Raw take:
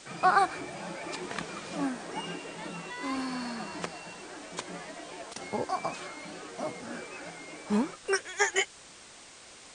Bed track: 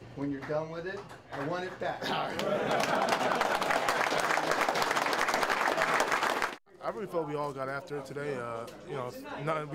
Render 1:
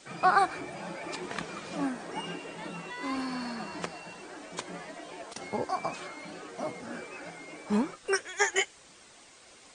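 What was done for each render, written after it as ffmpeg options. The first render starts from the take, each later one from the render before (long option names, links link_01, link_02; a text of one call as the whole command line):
ffmpeg -i in.wav -af "afftdn=noise_reduction=6:noise_floor=-51" out.wav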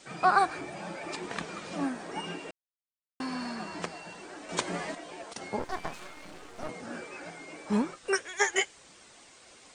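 ffmpeg -i in.wav -filter_complex "[0:a]asettb=1/sr,asplit=3[link_01][link_02][link_03];[link_01]atrim=end=5.594[link_04];[link_02]atrim=start=5.59:end=6.69,asetpts=PTS-STARTPTS,afade=type=in:duration=0.004:curve=qsin,afade=type=out:start_time=1.096:duration=0.004:curve=qsin,aeval=exprs='max(val(0),0)':channel_layout=same[link_05];[link_03]atrim=start=6.686[link_06];[link_04][link_05]acrossfade=duration=0.004:curve1=hsin:curve2=qsin[link_07];[link_07][link_06]acrossfade=duration=0.004:curve1=qsin:curve2=hsin,asplit=5[link_08][link_09][link_10][link_11][link_12];[link_08]atrim=end=2.51,asetpts=PTS-STARTPTS,afade=type=out:start_time=2.506:duration=0.004:curve=hsin[link_13];[link_09]atrim=start=2.51:end=3.2,asetpts=PTS-STARTPTS,volume=0[link_14];[link_10]atrim=start=3.2:end=4.492,asetpts=PTS-STARTPTS,afade=type=in:duration=0.004:curve=hsin[link_15];[link_11]atrim=start=4.488:end=4.952,asetpts=PTS-STARTPTS,volume=7dB[link_16];[link_12]atrim=start=4.948[link_17];[link_13][link_14][link_15]concat=n=3:v=0:a=1[link_18];[link_18][link_16]acrossfade=duration=0.004:curve1=hsin:curve2=hsin[link_19];[link_19][link_17]acrossfade=duration=0.004:curve1=hsin:curve2=hsin" out.wav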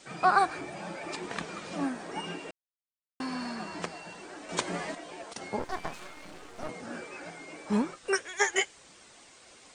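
ffmpeg -i in.wav -af anull out.wav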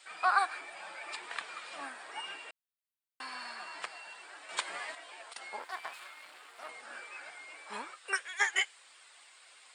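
ffmpeg -i in.wav -af "highpass=1100,equalizer=frequency=6100:width=3.1:gain=-11.5" out.wav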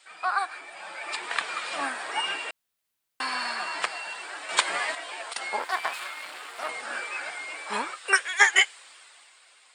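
ffmpeg -i in.wav -af "dynaudnorm=framelen=120:gausssize=17:maxgain=13dB" out.wav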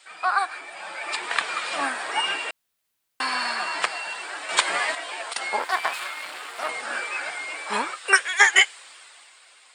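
ffmpeg -i in.wav -af "volume=4dB,alimiter=limit=-2dB:level=0:latency=1" out.wav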